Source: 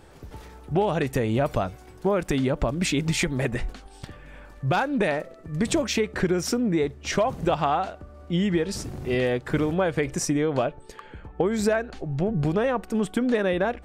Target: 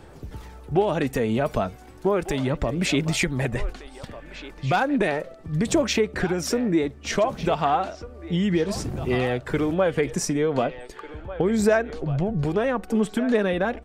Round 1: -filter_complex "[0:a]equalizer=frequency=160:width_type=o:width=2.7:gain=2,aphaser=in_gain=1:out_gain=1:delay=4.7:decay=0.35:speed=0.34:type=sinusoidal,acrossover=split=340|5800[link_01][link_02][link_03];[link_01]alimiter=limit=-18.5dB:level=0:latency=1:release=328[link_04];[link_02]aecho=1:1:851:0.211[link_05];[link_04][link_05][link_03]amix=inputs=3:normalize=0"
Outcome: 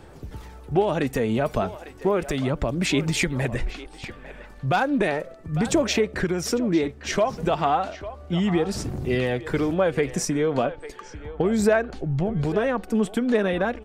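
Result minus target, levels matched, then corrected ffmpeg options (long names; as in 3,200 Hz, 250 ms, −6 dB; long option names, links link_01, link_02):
echo 646 ms early
-filter_complex "[0:a]equalizer=frequency=160:width_type=o:width=2.7:gain=2,aphaser=in_gain=1:out_gain=1:delay=4.7:decay=0.35:speed=0.34:type=sinusoidal,acrossover=split=340|5800[link_01][link_02][link_03];[link_01]alimiter=limit=-18.5dB:level=0:latency=1:release=328[link_04];[link_02]aecho=1:1:1497:0.211[link_05];[link_04][link_05][link_03]amix=inputs=3:normalize=0"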